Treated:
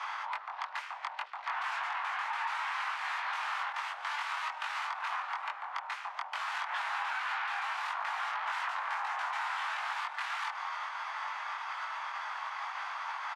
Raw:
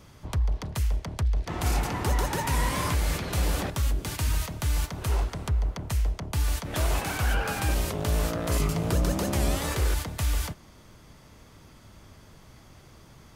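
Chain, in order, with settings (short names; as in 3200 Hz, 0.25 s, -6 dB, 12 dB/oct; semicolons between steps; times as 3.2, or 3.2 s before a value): sine folder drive 17 dB, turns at -13.5 dBFS; LPF 1700 Hz 12 dB/oct; limiter -26 dBFS, peak gain reduction 13 dB; steep high-pass 840 Hz 48 dB/oct; compressor 10:1, threshold -38 dBFS, peak gain reduction 8 dB; doubler 22 ms -2 dB; gain +4.5 dB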